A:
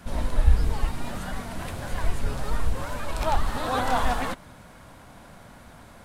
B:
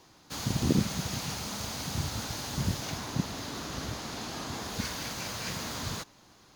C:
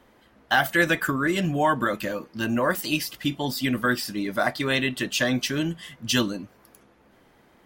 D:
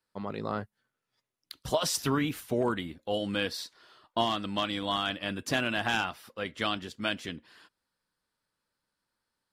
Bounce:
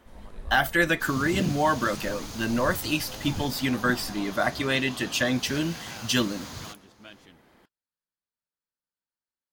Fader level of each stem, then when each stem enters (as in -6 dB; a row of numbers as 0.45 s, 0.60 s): -19.5 dB, -4.0 dB, -1.5 dB, -16.5 dB; 0.00 s, 0.70 s, 0.00 s, 0.00 s